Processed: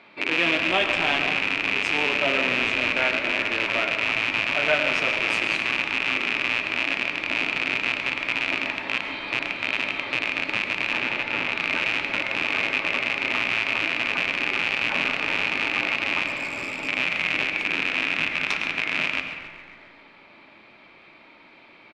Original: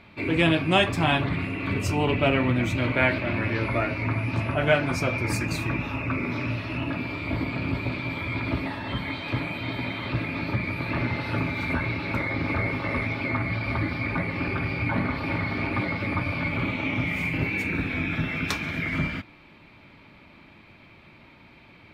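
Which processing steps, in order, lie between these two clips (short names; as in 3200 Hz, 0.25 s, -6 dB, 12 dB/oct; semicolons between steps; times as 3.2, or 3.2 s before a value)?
rattling part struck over -31 dBFS, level -8 dBFS; 10.97–11.52 high shelf 4300 Hz -9 dB; in parallel at -1 dB: compressor, threshold -34 dBFS, peak gain reduction 19 dB; 16.26–16.88 on the sum: hard clip -22.5 dBFS, distortion -20 dB; BPF 350–6000 Hz; frequency-shifting echo 0.136 s, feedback 64%, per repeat -79 Hz, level -14.5 dB; on a send at -7 dB: reverb RT60 1.6 s, pre-delay 65 ms; on the sum: gain -3.5 dB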